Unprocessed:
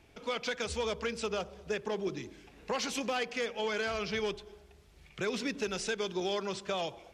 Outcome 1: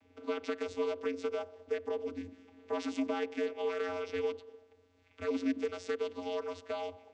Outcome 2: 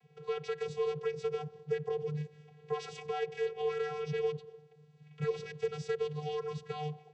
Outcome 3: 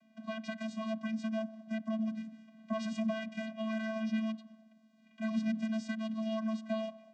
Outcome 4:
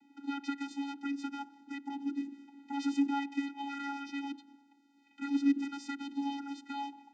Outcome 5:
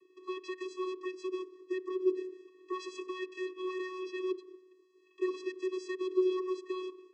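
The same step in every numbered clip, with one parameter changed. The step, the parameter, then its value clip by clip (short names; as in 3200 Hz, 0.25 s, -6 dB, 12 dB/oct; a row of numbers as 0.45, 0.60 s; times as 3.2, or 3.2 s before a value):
vocoder, frequency: 90, 150, 220, 280, 370 Hz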